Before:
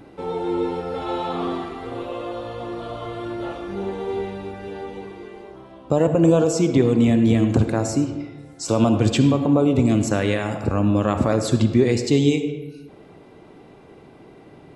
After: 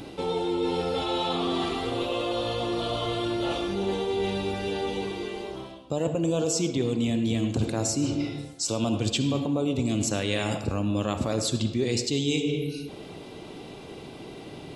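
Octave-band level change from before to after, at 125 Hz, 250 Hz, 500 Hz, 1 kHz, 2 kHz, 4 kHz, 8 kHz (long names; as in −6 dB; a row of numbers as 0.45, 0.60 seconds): −8.0, −7.5, −6.0, −4.0, −3.0, +3.5, +1.5 decibels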